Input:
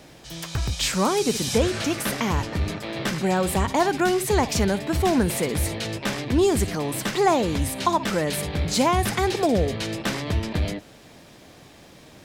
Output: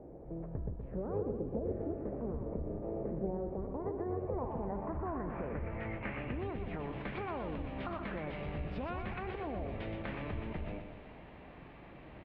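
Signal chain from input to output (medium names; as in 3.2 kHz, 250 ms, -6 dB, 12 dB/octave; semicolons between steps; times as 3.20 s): octave divider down 2 oct, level -4 dB; resonant high shelf 2.4 kHz -7.5 dB, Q 1.5; peak limiter -17.5 dBFS, peak gain reduction 9.5 dB; compression 3:1, threshold -35 dBFS, peak gain reduction 10.5 dB; low-pass sweep 430 Hz -> 3 kHz, 3.82–6.63 s; formant shift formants +3 st; distance through air 480 m; feedback delay 122 ms, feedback 55%, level -7 dB; trim -4.5 dB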